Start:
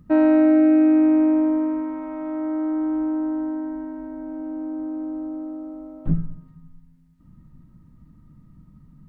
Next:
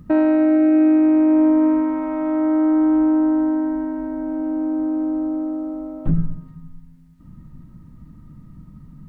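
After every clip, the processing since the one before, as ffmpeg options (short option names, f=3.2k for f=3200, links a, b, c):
-af "alimiter=level_in=16dB:limit=-1dB:release=50:level=0:latency=1,volume=-8.5dB"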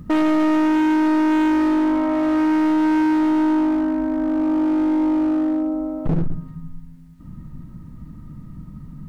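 -af "volume=21dB,asoftclip=hard,volume=-21dB,volume=5dB"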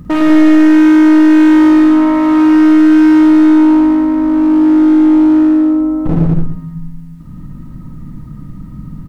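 -af "aecho=1:1:49|53|109|116|200:0.501|0.335|0.596|0.398|0.668,volume=5dB"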